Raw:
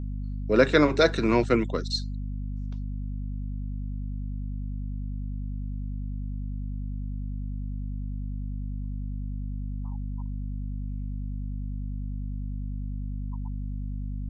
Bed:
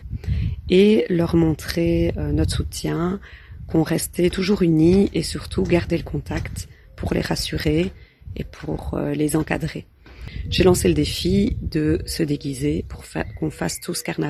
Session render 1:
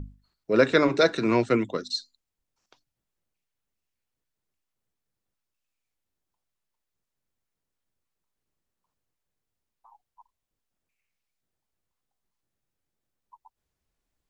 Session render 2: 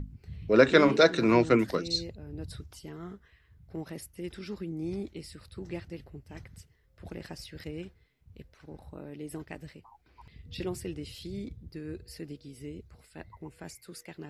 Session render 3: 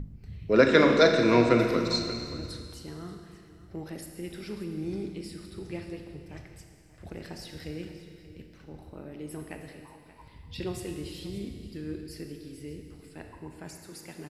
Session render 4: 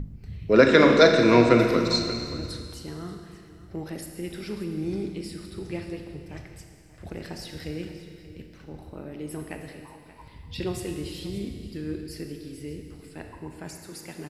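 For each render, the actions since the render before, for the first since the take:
hum notches 50/100/150/200/250/300 Hz
add bed -20 dB
delay 581 ms -16.5 dB; Schroeder reverb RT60 2.1 s, combs from 26 ms, DRR 4 dB
trim +4 dB; peak limiter -3 dBFS, peak gain reduction 2 dB

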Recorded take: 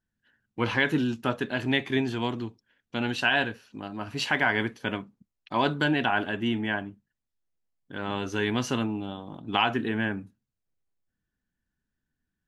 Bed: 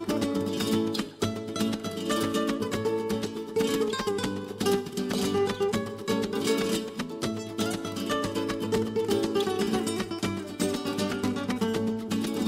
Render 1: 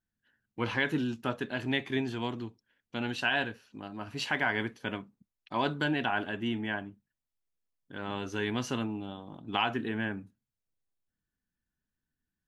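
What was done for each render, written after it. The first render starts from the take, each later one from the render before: trim -5 dB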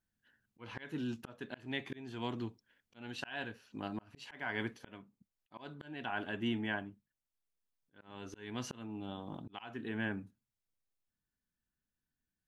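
slow attack 640 ms; gain riding within 4 dB 2 s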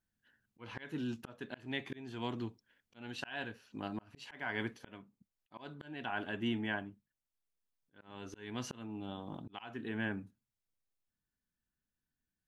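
no audible change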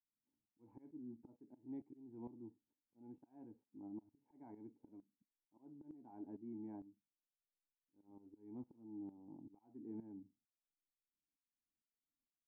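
cascade formant filter u; tremolo saw up 2.2 Hz, depth 80%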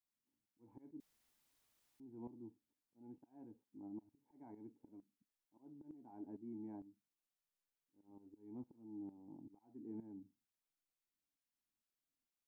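1.00–2.00 s: room tone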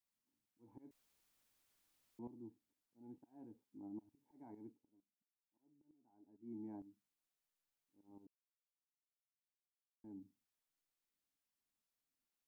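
0.91–2.19 s: room tone; 4.69–6.52 s: dip -17 dB, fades 0.14 s; 8.27–10.04 s: mute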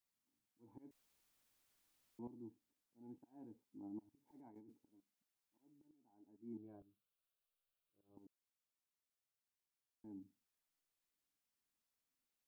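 4.27–5.88 s: compressor with a negative ratio -60 dBFS; 6.57–8.17 s: static phaser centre 1.3 kHz, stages 8

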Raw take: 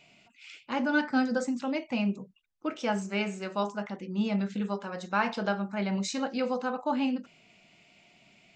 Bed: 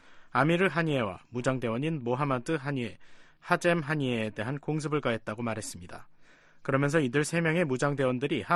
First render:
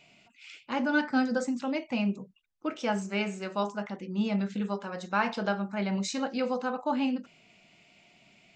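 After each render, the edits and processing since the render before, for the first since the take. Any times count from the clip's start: no audible change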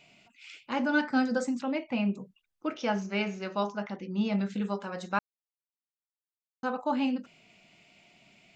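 1.62–2.15 s: low-pass 3.6 kHz; 2.73–4.33 s: steep low-pass 6.5 kHz 72 dB/octave; 5.19–6.63 s: mute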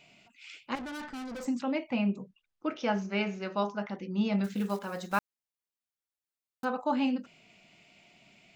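0.75–1.46 s: valve stage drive 38 dB, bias 0.6; 1.96–3.93 s: distance through air 57 m; 4.44–6.66 s: block-companded coder 5-bit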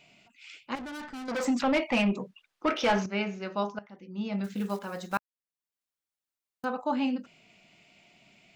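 1.28–3.06 s: overdrive pedal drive 21 dB, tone 3.9 kHz, clips at -16 dBFS; 3.79–4.66 s: fade in, from -17.5 dB; 5.17–6.64 s: slow attack 665 ms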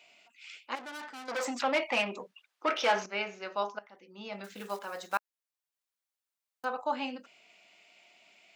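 high-pass 500 Hz 12 dB/octave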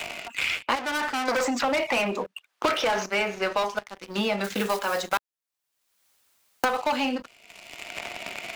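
waveshaping leveller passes 3; three bands compressed up and down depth 100%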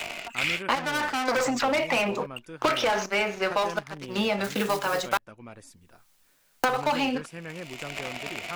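add bed -12.5 dB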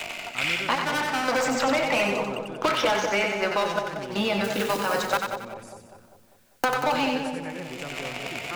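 two-band feedback delay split 820 Hz, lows 198 ms, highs 92 ms, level -4.5 dB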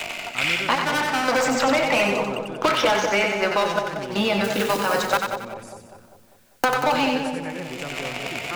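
trim +3.5 dB

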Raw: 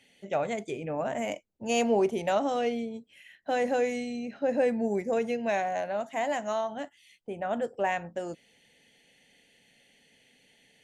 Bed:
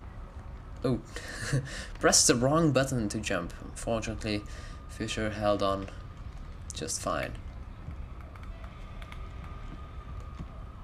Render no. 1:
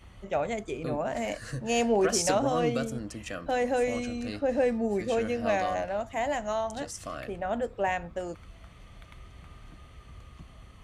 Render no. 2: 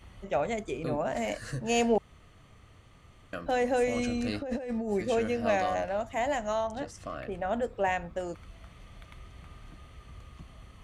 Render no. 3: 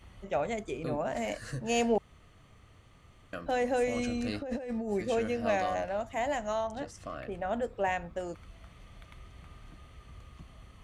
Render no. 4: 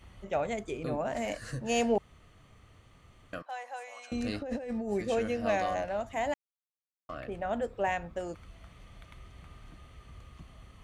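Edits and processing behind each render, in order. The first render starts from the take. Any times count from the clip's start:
add bed -7 dB
1.98–3.33 s: room tone; 3.96–4.92 s: compressor with a negative ratio -32 dBFS; 6.67–7.32 s: low-pass 2.3 kHz 6 dB/octave
trim -2 dB
3.42–4.12 s: ladder high-pass 760 Hz, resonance 50%; 6.34–7.09 s: mute

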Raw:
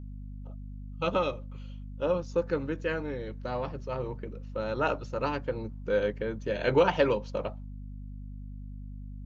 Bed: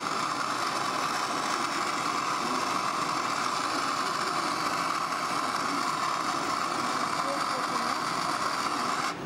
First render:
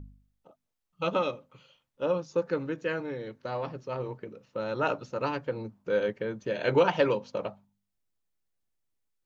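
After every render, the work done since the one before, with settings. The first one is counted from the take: de-hum 50 Hz, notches 5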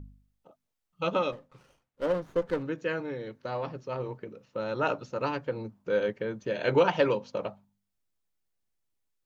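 1.32–2.63 s: sliding maximum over 9 samples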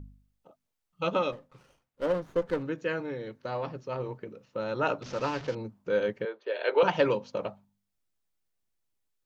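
5.02–5.55 s: one-bit delta coder 32 kbps, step -36.5 dBFS; 6.25–6.83 s: elliptic band-pass 410–4100 Hz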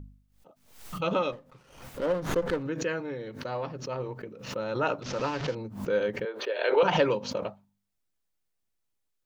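swell ahead of each attack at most 88 dB/s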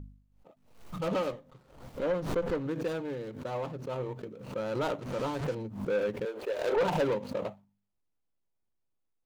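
median filter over 25 samples; saturation -22 dBFS, distortion -14 dB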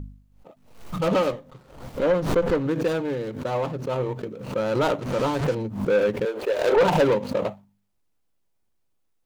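trim +9 dB

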